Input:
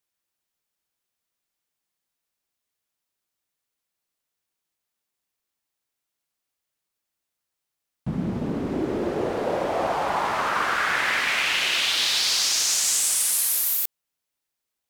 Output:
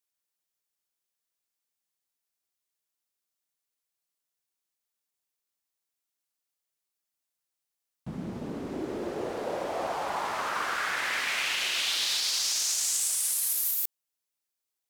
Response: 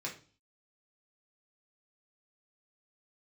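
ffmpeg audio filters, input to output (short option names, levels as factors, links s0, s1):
-af "bass=f=250:g=-4,treble=f=4000:g=5,alimiter=limit=0.251:level=0:latency=1:release=24,volume=0.447"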